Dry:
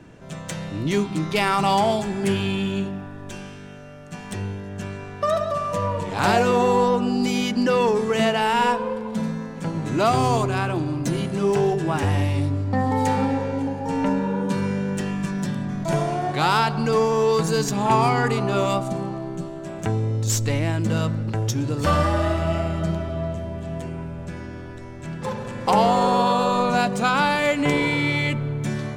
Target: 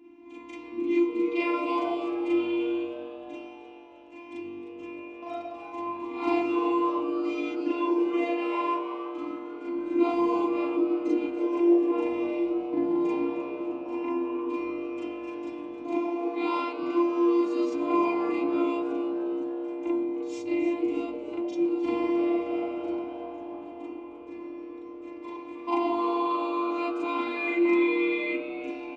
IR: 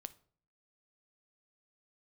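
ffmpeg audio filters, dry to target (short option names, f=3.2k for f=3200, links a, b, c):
-filter_complex "[0:a]lowpass=7.2k,asplit=2[a][b];[1:a]atrim=start_sample=2205,asetrate=48510,aresample=44100,adelay=39[c];[b][c]afir=irnorm=-1:irlink=0,volume=9dB[d];[a][d]amix=inputs=2:normalize=0,afftfilt=real='hypot(re,im)*cos(PI*b)':imag='0':win_size=512:overlap=0.75,asplit=3[e][f][g];[e]bandpass=f=300:t=q:w=8,volume=0dB[h];[f]bandpass=f=870:t=q:w=8,volume=-6dB[i];[g]bandpass=f=2.24k:t=q:w=8,volume=-9dB[j];[h][i][j]amix=inputs=3:normalize=0,asplit=2[k][l];[l]asplit=5[m][n][o][p][q];[m]adelay=308,afreqshift=130,volume=-14dB[r];[n]adelay=616,afreqshift=260,volume=-20.4dB[s];[o]adelay=924,afreqshift=390,volume=-26.8dB[t];[p]adelay=1232,afreqshift=520,volume=-33.1dB[u];[q]adelay=1540,afreqshift=650,volume=-39.5dB[v];[r][s][t][u][v]amix=inputs=5:normalize=0[w];[k][w]amix=inputs=2:normalize=0,volume=6dB"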